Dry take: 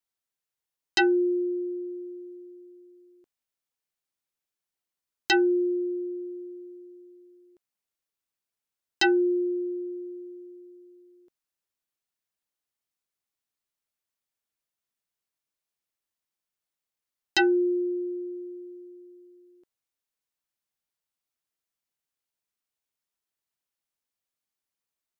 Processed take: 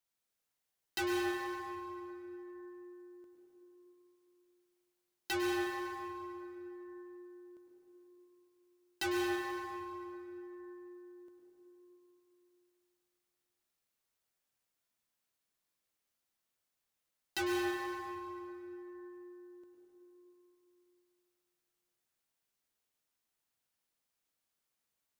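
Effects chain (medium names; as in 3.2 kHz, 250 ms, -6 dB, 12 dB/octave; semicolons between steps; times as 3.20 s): saturation -33.5 dBFS, distortion -5 dB; plate-style reverb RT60 3 s, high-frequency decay 0.6×, pre-delay 90 ms, DRR -1 dB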